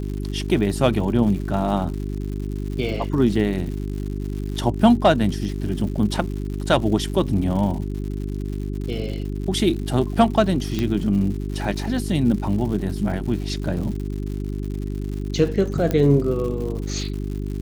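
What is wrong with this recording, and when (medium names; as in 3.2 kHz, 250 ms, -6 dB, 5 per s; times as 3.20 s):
crackle 160 per s -31 dBFS
hum 50 Hz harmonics 8 -27 dBFS
10.79 s: pop -11 dBFS
15.91 s: pop -10 dBFS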